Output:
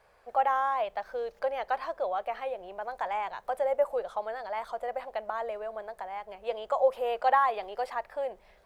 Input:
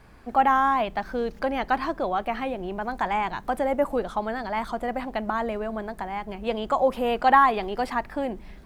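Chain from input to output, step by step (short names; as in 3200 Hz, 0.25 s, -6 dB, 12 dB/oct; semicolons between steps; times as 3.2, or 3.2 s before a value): resonant low shelf 380 Hz -11.5 dB, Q 3; gain -9 dB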